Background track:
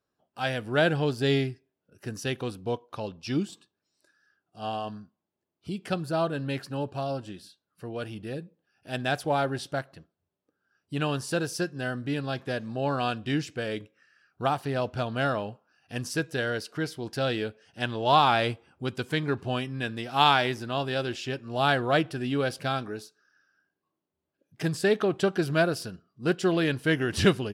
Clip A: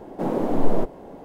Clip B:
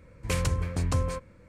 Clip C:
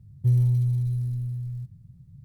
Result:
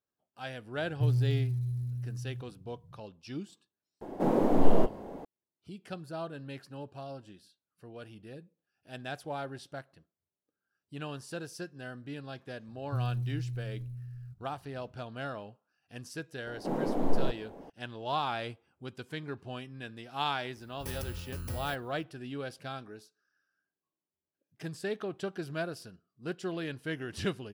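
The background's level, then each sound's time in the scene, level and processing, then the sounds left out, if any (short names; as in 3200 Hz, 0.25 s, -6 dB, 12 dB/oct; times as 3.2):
background track -11.5 dB
0.76 add C -6.5 dB + HPF 55 Hz
4.01 add A -2 dB
12.68 add C -11.5 dB
16.46 add A -7.5 dB
20.56 add B -12 dB + FFT order left unsorted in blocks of 32 samples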